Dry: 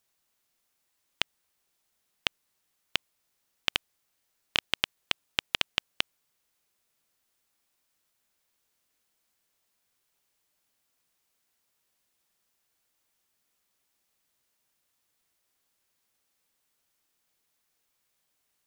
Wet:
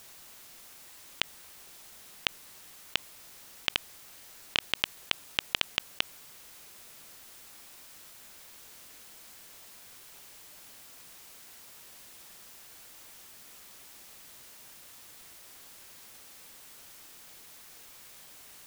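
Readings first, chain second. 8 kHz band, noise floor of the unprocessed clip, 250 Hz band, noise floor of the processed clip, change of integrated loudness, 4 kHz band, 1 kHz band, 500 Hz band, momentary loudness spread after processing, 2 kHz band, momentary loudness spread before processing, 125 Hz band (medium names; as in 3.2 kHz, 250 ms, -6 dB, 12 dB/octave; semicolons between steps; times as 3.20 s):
+4.5 dB, -77 dBFS, -0.5 dB, -52 dBFS, -7.5 dB, -1.0 dB, -0.5 dB, -0.5 dB, 16 LU, -1.0 dB, 5 LU, -0.5 dB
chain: compressor with a negative ratio -39 dBFS, ratio -1; trim +12.5 dB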